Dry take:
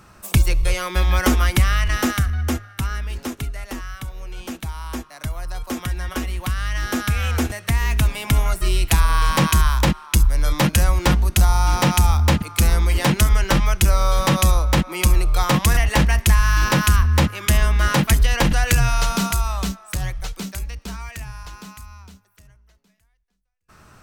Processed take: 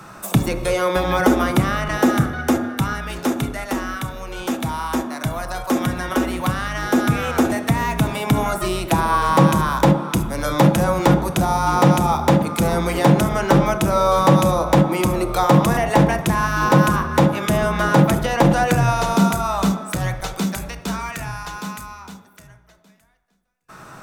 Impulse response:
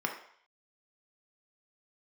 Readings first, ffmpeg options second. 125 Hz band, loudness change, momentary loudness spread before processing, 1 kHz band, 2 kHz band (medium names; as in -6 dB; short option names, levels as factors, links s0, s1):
-0.5 dB, +1.0 dB, 15 LU, +6.0 dB, +0.5 dB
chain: -filter_complex "[0:a]acrossover=split=120|880[s0][s1][s2];[s0]acompressor=threshold=0.0398:ratio=4[s3];[s1]acompressor=threshold=0.0891:ratio=4[s4];[s2]acompressor=threshold=0.0178:ratio=4[s5];[s3][s4][s5]amix=inputs=3:normalize=0,asplit=2[s6][s7];[1:a]atrim=start_sample=2205,asetrate=29547,aresample=44100[s8];[s7][s8]afir=irnorm=-1:irlink=0,volume=0.631[s9];[s6][s9]amix=inputs=2:normalize=0,volume=1.33"